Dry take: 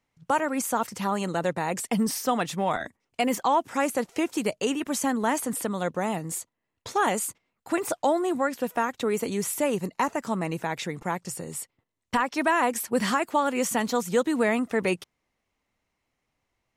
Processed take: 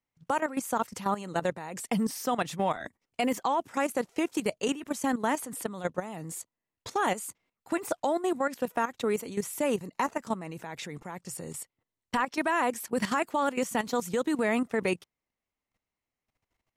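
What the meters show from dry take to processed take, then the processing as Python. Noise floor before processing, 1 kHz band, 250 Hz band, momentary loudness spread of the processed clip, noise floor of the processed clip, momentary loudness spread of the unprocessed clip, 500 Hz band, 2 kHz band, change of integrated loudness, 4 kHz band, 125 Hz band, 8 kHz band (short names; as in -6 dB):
-80 dBFS, -4.0 dB, -3.5 dB, 12 LU, under -85 dBFS, 8 LU, -3.5 dB, -3.5 dB, -4.0 dB, -4.5 dB, -5.0 dB, -6.5 dB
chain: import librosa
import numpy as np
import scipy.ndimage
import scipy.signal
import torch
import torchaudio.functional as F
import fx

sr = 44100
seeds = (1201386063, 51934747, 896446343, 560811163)

y = fx.level_steps(x, sr, step_db=13)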